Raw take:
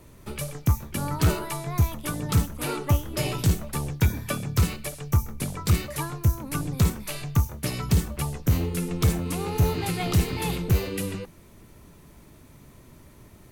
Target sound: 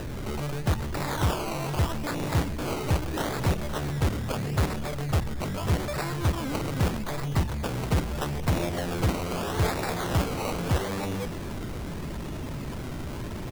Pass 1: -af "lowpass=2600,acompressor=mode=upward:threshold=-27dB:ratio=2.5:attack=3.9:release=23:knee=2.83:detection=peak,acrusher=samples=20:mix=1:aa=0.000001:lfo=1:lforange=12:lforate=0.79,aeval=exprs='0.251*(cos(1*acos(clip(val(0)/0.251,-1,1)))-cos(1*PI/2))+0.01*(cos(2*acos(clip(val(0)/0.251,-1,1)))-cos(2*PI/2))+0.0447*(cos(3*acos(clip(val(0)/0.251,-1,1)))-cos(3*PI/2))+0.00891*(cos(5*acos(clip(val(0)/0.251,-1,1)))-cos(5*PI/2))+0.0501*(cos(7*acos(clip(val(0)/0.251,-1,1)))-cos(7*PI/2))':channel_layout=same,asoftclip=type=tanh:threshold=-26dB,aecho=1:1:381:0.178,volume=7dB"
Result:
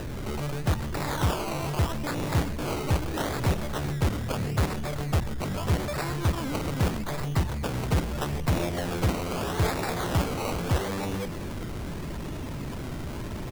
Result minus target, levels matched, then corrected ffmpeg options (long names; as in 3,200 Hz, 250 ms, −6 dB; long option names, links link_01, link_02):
echo 133 ms early
-af "lowpass=2600,acompressor=mode=upward:threshold=-27dB:ratio=2.5:attack=3.9:release=23:knee=2.83:detection=peak,acrusher=samples=20:mix=1:aa=0.000001:lfo=1:lforange=12:lforate=0.79,aeval=exprs='0.251*(cos(1*acos(clip(val(0)/0.251,-1,1)))-cos(1*PI/2))+0.01*(cos(2*acos(clip(val(0)/0.251,-1,1)))-cos(2*PI/2))+0.0447*(cos(3*acos(clip(val(0)/0.251,-1,1)))-cos(3*PI/2))+0.00891*(cos(5*acos(clip(val(0)/0.251,-1,1)))-cos(5*PI/2))+0.0501*(cos(7*acos(clip(val(0)/0.251,-1,1)))-cos(7*PI/2))':channel_layout=same,asoftclip=type=tanh:threshold=-26dB,aecho=1:1:514:0.178,volume=7dB"